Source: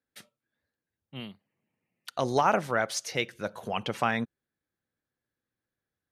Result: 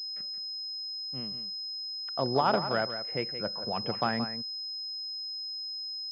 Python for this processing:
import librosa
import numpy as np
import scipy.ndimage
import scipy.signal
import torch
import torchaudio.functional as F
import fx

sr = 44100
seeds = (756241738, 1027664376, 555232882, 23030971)

y = scipy.signal.sosfilt(scipy.signal.butter(2, 77.0, 'highpass', fs=sr, output='sos'), x)
y = fx.air_absorb(y, sr, metres=470.0)
y = y + 10.0 ** (-10.5 / 20.0) * np.pad(y, (int(173 * sr / 1000.0), 0))[:len(y)]
y = fx.pwm(y, sr, carrier_hz=5100.0)